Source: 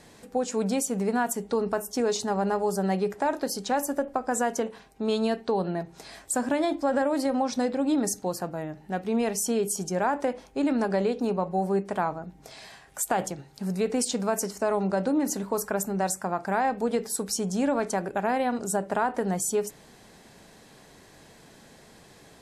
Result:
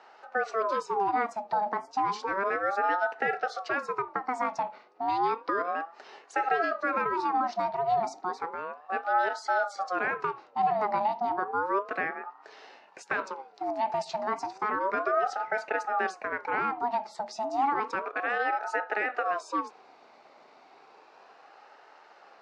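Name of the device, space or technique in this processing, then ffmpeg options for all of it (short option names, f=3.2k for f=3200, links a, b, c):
voice changer toy: -filter_complex "[0:a]aeval=exprs='val(0)*sin(2*PI*750*n/s+750*0.45/0.32*sin(2*PI*0.32*n/s))':c=same,highpass=400,equalizer=f=420:t=q:w=4:g=5,equalizer=f=790:t=q:w=4:g=7,equalizer=f=3.3k:t=q:w=4:g=-9,lowpass=f=4.4k:w=0.5412,lowpass=f=4.4k:w=1.3066,asettb=1/sr,asplit=3[a][b][c];[a]atrim=end=18.024[d];[b]atrim=start=18.02:end=19.41,asetpts=PTS-STARTPTS,afade=t=in:d=0.004:c=qsin,afade=t=out:st=1.386:d=0.004:c=qsin,bass=f=250:g=-13,treble=f=4k:g=1[e];[c]atrim=start=19.406[f];[d][e]acrossfade=d=0.004:c1=hsin:c2=qsin[g];[g][f]acrossfade=d=0.004:c1=qsin:c2=hsin"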